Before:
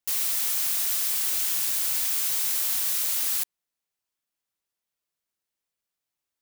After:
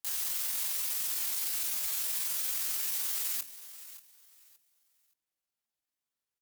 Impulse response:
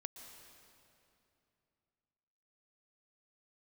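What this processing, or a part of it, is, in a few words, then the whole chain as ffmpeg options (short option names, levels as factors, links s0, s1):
chipmunk voice: -filter_complex "[0:a]bandreject=f=60:t=h:w=6,bandreject=f=120:t=h:w=6,bandreject=f=180:t=h:w=6,bandreject=f=240:t=h:w=6,bandreject=f=300:t=h:w=6,bandreject=f=360:t=h:w=6,bandreject=f=420:t=h:w=6,asettb=1/sr,asplit=3[s0][s1][s2];[s0]atrim=end=0.984[s3];[s1]atrim=start=0.98:end=1.55,asetpts=PTS-STARTPTS,afade=t=in:d=0.004:c=qsin,afade=t=out:st=0.566:d=0.004:c=qsin,highpass=84[s4];[s2]atrim=start=1.546[s5];[s3][s4]acrossfade=d=0.004:c1=hsin:c2=qsin[s6];[s6][s5]acrossfade=d=0.004:c1=qsin:c2=hsin,equalizer=f=170:t=o:w=0.32:g=3,aecho=1:1:570|1140|1710:0.178|0.0445|0.0111,asetrate=68011,aresample=44100,atempo=0.64842,volume=0.75"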